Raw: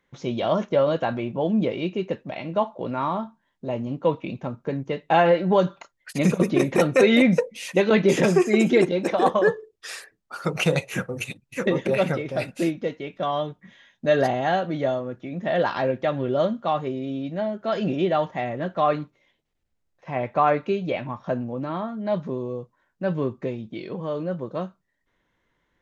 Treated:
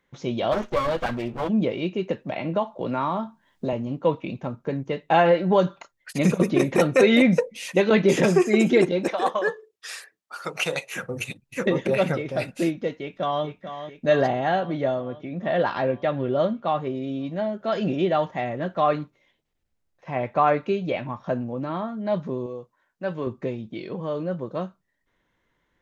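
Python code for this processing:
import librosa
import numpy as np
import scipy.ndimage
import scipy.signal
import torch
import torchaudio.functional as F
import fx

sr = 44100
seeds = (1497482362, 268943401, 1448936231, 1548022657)

y = fx.lower_of_two(x, sr, delay_ms=8.2, at=(0.51, 1.48), fade=0.02)
y = fx.band_squash(y, sr, depth_pct=70, at=(2.09, 3.73))
y = fx.highpass(y, sr, hz=800.0, slope=6, at=(9.08, 11.03))
y = fx.echo_throw(y, sr, start_s=12.95, length_s=0.5, ms=440, feedback_pct=70, wet_db=-10.0)
y = fx.air_absorb(y, sr, metres=93.0, at=(14.2, 16.95))
y = fx.low_shelf(y, sr, hz=300.0, db=-10.0, at=(22.46, 23.27))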